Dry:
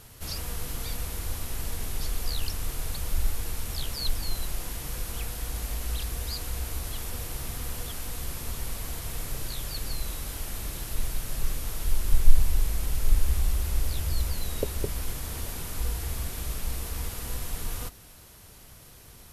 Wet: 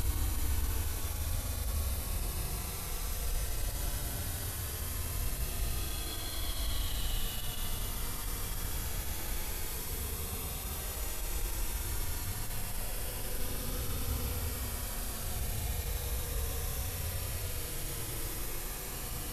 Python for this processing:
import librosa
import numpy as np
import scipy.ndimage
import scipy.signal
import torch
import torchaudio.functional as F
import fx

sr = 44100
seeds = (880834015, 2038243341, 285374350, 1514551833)

y = fx.paulstretch(x, sr, seeds[0], factor=36.0, window_s=0.05, from_s=6.76)
y = fx.attack_slew(y, sr, db_per_s=150.0)
y = F.gain(torch.from_numpy(y), -1.5).numpy()